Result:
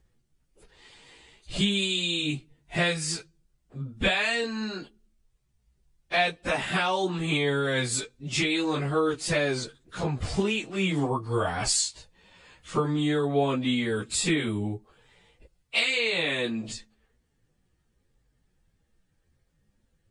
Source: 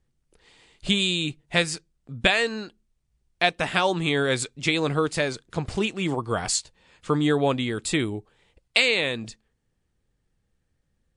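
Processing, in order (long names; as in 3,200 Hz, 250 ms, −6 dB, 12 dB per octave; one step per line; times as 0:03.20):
in parallel at −1 dB: brickwall limiter −14.5 dBFS, peak gain reduction 10 dB
on the sum: downward compressor 2.5 to 1, threshold −21 dBFS, peak gain reduction 7 dB
time stretch by phase vocoder 1.8×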